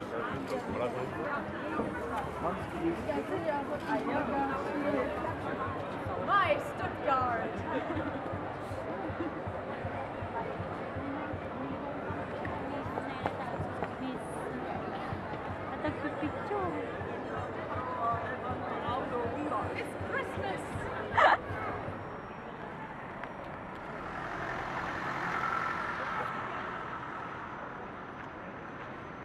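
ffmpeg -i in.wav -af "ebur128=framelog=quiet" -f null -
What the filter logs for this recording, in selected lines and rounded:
Integrated loudness:
  I:         -35.1 LUFS
  Threshold: -45.1 LUFS
Loudness range:
  LRA:         5.6 LU
  Threshold: -54.9 LUFS
  LRA low:   -37.7 LUFS
  LRA high:  -32.1 LUFS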